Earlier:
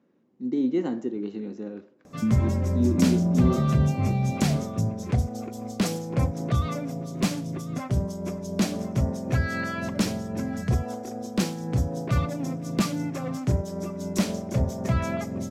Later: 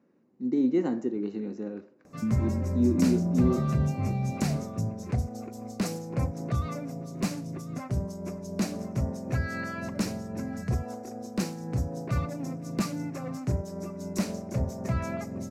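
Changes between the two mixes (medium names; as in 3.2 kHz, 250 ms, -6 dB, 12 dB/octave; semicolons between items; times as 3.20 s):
background -4.5 dB; master: add peaking EQ 3.3 kHz -10.5 dB 0.3 oct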